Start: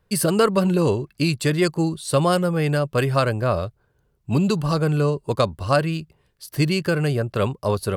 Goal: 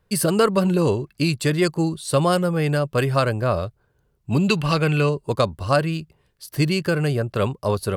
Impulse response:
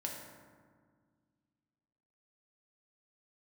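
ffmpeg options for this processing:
-filter_complex "[0:a]asettb=1/sr,asplit=3[s0][s1][s2];[s0]atrim=end=4.484[s3];[s1]atrim=start=4.48:end=5.09,asetpts=PTS-STARTPTS,afade=t=in:d=0.004:c=qsin,afade=t=out:st=0.606:d=0.004:c=qsin,equalizer=f=2500:t=o:w=1.1:g=13.5[s4];[s2]atrim=start=5.086[s5];[s3][s4]acrossfade=d=0.004:c1=hsin:c2=qsin[s6];[s6][s5]acrossfade=d=0.004:c1=qsin:c2=hsin"

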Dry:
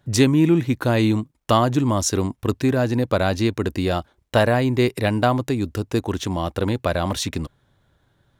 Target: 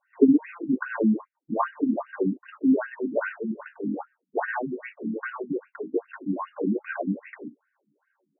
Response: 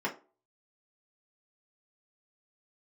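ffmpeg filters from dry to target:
-filter_complex "[0:a]asplit=3[s0][s1][s2];[s0]afade=t=out:st=3.28:d=0.02[s3];[s1]aeval=exprs='val(0)*sin(2*PI*120*n/s)':c=same,afade=t=in:st=3.28:d=0.02,afade=t=out:st=5.7:d=0.02[s4];[s2]afade=t=in:st=5.7:d=0.02[s5];[s3][s4][s5]amix=inputs=3:normalize=0[s6];[1:a]atrim=start_sample=2205,atrim=end_sample=3528[s7];[s6][s7]afir=irnorm=-1:irlink=0,afftfilt=real='re*between(b*sr/1024,220*pow(2100/220,0.5+0.5*sin(2*PI*2.5*pts/sr))/1.41,220*pow(2100/220,0.5+0.5*sin(2*PI*2.5*pts/sr))*1.41)':imag='im*between(b*sr/1024,220*pow(2100/220,0.5+0.5*sin(2*PI*2.5*pts/sr))/1.41,220*pow(2100/220,0.5+0.5*sin(2*PI*2.5*pts/sr))*1.41)':win_size=1024:overlap=0.75,volume=0.376"

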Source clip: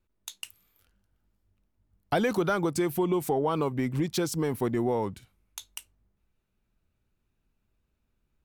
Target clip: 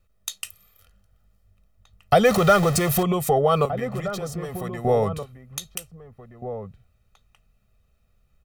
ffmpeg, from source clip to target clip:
-filter_complex "[0:a]asettb=1/sr,asplit=3[s0][s1][s2];[s0]atrim=end=2.254[s3];[s1]atrim=start=2.25:end=3.03,asetpts=PTS-STARTPTS,afade=t=in:d=0.004:c=qsin,afade=t=out:st=0.776:d=0.004:c=qsin,aeval=exprs='val(0)+0.5*0.0282*sgn(val(0))':c=same[s4];[s2]atrim=start=3.026[s5];[s3][s4]acrossfade=d=0.004:c1=hsin:c2=qsin[s6];[s6][s5]acrossfade=d=0.004:c1=qsin:c2=hsin,asettb=1/sr,asplit=3[s7][s8][s9];[s7]atrim=end=3.654[s10];[s8]atrim=start=3.65:end=4.85,asetpts=PTS-STARTPTS,afade=t=in:d=0.004:c=qsin,afade=t=out:st=1.196:d=0.004:c=qsin,acrossover=split=550|1100[s11][s12][s13];[s11]acompressor=threshold=0.00891:ratio=4[s14];[s12]acompressor=threshold=0.00282:ratio=4[s15];[s13]acompressor=threshold=0.00355:ratio=4[s16];[s14][s15][s16]amix=inputs=3:normalize=0[s17];[s9]atrim=start=4.846[s18];[s10][s17]acrossfade=d=0.004:c1=hsin:c2=qsin[s19];[s19][s18]acrossfade=d=0.004:c1=qsin:c2=hsin,aecho=1:1:1.6:0.87,asplit=2[s20][s21];[s21]adelay=1574,volume=0.282,highshelf=f=4000:g=-35.4[s22];[s20][s22]amix=inputs=2:normalize=0,volume=2.11"

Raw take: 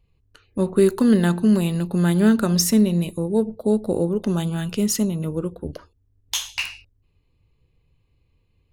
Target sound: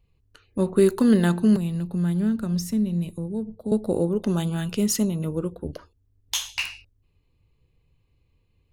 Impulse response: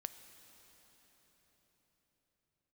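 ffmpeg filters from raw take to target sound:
-filter_complex "[0:a]asettb=1/sr,asplit=3[s0][s1][s2];[s0]atrim=end=1.564[s3];[s1]atrim=start=1.56:end=3.72,asetpts=PTS-STARTPTS,afade=t=in:d=0.004:c=qsin,afade=t=out:st=2.156:d=0.004:c=qsin,acrossover=split=200[s4][s5];[s5]acompressor=threshold=0.00794:ratio=2[s6];[s4][s6]amix=inputs=2:normalize=0[s7];[s2]atrim=start=3.716[s8];[s3][s7]acrossfade=d=0.004:c1=hsin:c2=qsin[s9];[s9][s8]acrossfade=d=0.004:c1=qsin:c2=hsin,volume=0.841"

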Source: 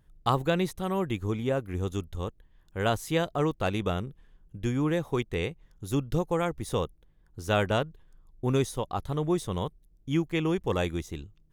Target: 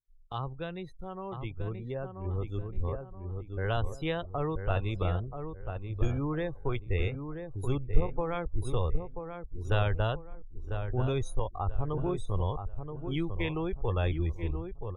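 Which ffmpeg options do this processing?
-filter_complex "[0:a]afftdn=nr=30:nf=-37,equalizer=f=220:w=1.3:g=-9,acrossover=split=180[s0][s1];[s1]acompressor=threshold=0.01:ratio=2[s2];[s0][s2]amix=inputs=2:normalize=0,asubboost=boost=4.5:cutoff=63,asplit=2[s3][s4];[s4]adelay=758,lowpass=f=1600:p=1,volume=0.447,asplit=2[s5][s6];[s6]adelay=758,lowpass=f=1600:p=1,volume=0.35,asplit=2[s7][s8];[s8]adelay=758,lowpass=f=1600:p=1,volume=0.35,asplit=2[s9][s10];[s10]adelay=758,lowpass=f=1600:p=1,volume=0.35[s11];[s3][s5][s7][s9][s11]amix=inputs=5:normalize=0,dynaudnorm=f=240:g=17:m=2.11,atempo=0.77,volume=0.75"

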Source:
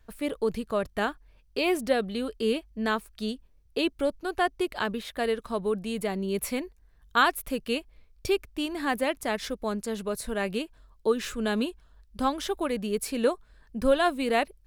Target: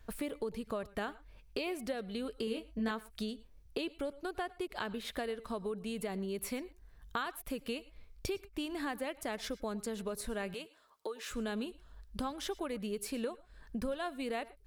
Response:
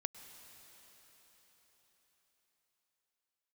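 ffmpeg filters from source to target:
-filter_complex "[0:a]acompressor=threshold=0.0126:ratio=6,asettb=1/sr,asplit=3[s0][s1][s2];[s0]atrim=end=2.454[s3];[s1]atrim=start=2.45:end=2.91,asetpts=PTS-STARTPTS,afade=t=in:d=0.004:c=qsin,afade=t=out:st=0.456:d=0.004:c=qsin,asplit=2[s4][s5];[s5]adelay=22,volume=0.668[s6];[s4][s6]amix=inputs=2:normalize=0,atrim=end_sample=20286[s7];[s2]atrim=start=2.906[s8];[s3][s7]acrossfade=d=0.004:c1=hsin:c2=qsin[s9];[s9][s8]acrossfade=d=0.004:c1=qsin:c2=hsin,asettb=1/sr,asplit=3[s10][s11][s12];[s10]atrim=end=10.544[s13];[s11]atrim=start=10.54:end=11.31,asetpts=PTS-STARTPTS,afade=t=in:d=0.004:c=qsin,afade=t=out:st=0.766:d=0.004:c=qsin,highpass=480[s14];[s12]atrim=start=11.306[s15];[s13][s14]acrossfade=d=0.004:c1=hsin:c2=qsin[s16];[s16][s15]acrossfade=d=0.004:c1=qsin:c2=hsin[s17];[1:a]atrim=start_sample=2205,afade=t=out:st=0.17:d=0.01,atrim=end_sample=7938[s18];[s17][s18]afir=irnorm=-1:irlink=0,volume=1.68"

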